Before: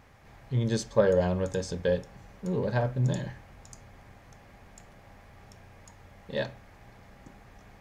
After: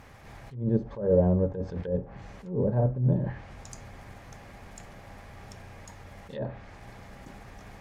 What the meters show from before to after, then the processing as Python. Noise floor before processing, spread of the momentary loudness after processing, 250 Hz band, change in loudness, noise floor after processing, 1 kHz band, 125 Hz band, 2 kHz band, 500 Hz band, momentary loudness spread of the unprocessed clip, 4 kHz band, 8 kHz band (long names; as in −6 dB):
−54 dBFS, 22 LU, +3.0 dB, +1.0 dB, −49 dBFS, −3.0 dB, +2.5 dB, −8.0 dB, −0.5 dB, 12 LU, below −10 dB, −7.0 dB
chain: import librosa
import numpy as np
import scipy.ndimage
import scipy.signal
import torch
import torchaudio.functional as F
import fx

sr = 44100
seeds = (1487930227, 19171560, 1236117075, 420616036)

y = fx.block_float(x, sr, bits=5)
y = fx.env_lowpass_down(y, sr, base_hz=520.0, full_db=-25.5)
y = fx.attack_slew(y, sr, db_per_s=120.0)
y = y * librosa.db_to_amplitude(6.0)